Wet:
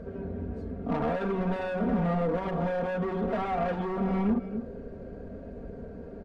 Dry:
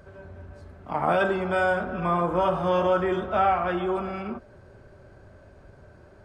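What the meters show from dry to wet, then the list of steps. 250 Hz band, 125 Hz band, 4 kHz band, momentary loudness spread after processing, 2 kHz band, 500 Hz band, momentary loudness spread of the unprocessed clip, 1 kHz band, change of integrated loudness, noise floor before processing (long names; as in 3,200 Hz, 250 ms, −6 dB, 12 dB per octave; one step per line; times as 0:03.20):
+2.0 dB, +1.5 dB, −9.5 dB, 15 LU, −10.0 dB, −5.0 dB, 14 LU, −8.5 dB, −5.0 dB, −52 dBFS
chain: octave-band graphic EQ 125/250/500/1,000 Hz +4/+7/+9/−7 dB
single-tap delay 262 ms −16.5 dB
downward compressor 10 to 1, threshold −24 dBFS, peak gain reduction 13 dB
hard clipping −29.5 dBFS, distortion −8 dB
low-pass filter 1,500 Hz 6 dB per octave
low-shelf EQ 220 Hz +3.5 dB
comb filter 4.3 ms, depth 84%
level +2 dB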